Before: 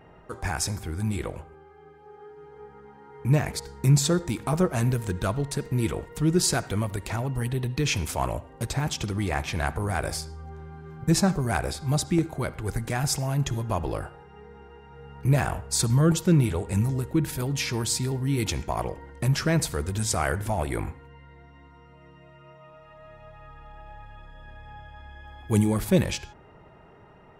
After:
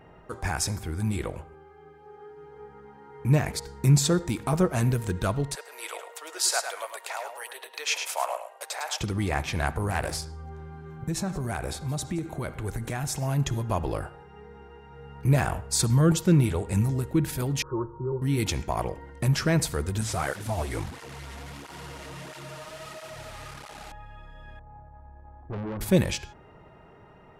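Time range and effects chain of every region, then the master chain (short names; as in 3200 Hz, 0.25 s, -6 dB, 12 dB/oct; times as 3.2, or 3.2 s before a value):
5.55–9.01 steep high-pass 550 Hz + feedback echo 0.105 s, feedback 16%, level -7 dB
9.9–10.33 notches 50/100/150/200/250/300/350/400/450 Hz + Doppler distortion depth 0.38 ms
10.85–13.22 notch 4900 Hz, Q 8.3 + compressor 4:1, threshold -27 dBFS + echo 0.173 s -19.5 dB
17.62–18.22 steep low-pass 1300 Hz 72 dB/oct + fixed phaser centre 720 Hz, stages 6 + comb 5.5 ms, depth 97%
20.01–23.92 delta modulation 64 kbps, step -32 dBFS + tape flanging out of phase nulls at 1.5 Hz, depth 7 ms
24.59–25.81 LPF 1100 Hz 24 dB/oct + tube stage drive 31 dB, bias 0.6
whole clip: dry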